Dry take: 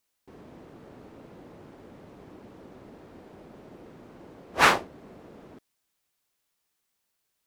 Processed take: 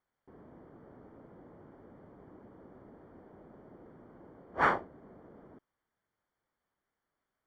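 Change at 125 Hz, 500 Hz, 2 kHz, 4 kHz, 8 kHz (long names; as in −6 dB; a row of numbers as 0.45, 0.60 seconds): −6.0 dB, −6.0 dB, −9.0 dB, −21.5 dB, below −25 dB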